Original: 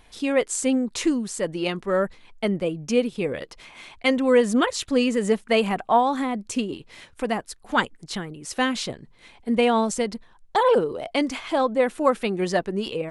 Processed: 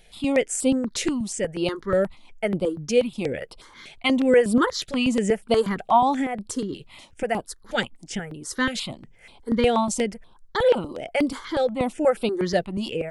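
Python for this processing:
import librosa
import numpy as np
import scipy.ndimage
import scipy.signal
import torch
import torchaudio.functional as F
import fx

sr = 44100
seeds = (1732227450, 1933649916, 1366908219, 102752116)

y = fx.phaser_held(x, sr, hz=8.3, low_hz=280.0, high_hz=6400.0)
y = F.gain(torch.from_numpy(y), 2.5).numpy()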